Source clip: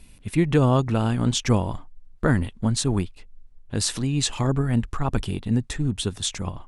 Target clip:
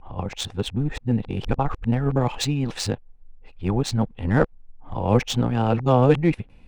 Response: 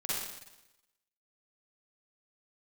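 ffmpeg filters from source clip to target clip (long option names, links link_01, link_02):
-af "areverse,adynamicsmooth=sensitivity=2:basefreq=2800,equalizer=frequency=500:width_type=o:width=0.33:gain=7,equalizer=frequency=800:width_type=o:width=0.33:gain=8,equalizer=frequency=2500:width_type=o:width=0.33:gain=4"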